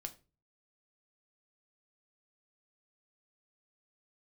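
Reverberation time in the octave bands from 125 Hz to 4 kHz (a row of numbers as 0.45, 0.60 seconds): 0.60, 0.45, 0.35, 0.30, 0.30, 0.25 seconds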